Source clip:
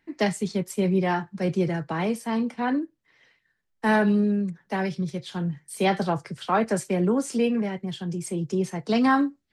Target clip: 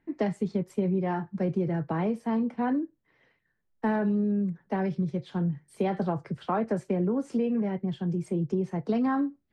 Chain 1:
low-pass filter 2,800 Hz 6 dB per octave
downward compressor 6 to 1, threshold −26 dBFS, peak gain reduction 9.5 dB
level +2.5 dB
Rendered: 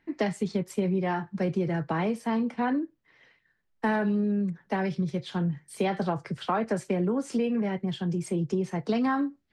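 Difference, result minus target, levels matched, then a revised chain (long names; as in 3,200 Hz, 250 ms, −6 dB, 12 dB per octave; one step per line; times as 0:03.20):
2,000 Hz band +5.0 dB
low-pass filter 740 Hz 6 dB per octave
downward compressor 6 to 1, threshold −26 dBFS, peak gain reduction 7.5 dB
level +2.5 dB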